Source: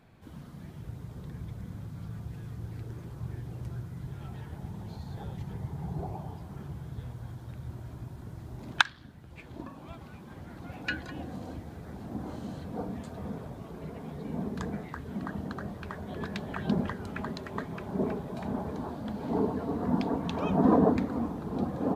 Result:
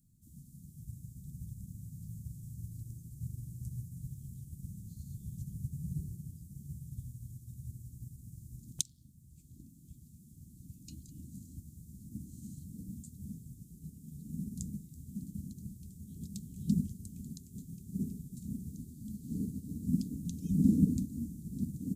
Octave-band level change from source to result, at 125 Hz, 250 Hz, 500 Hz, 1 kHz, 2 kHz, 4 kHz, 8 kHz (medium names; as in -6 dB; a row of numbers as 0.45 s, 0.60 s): -2.5 dB, -4.5 dB, -25.5 dB, under -40 dB, under -40 dB, -13.0 dB, +7.5 dB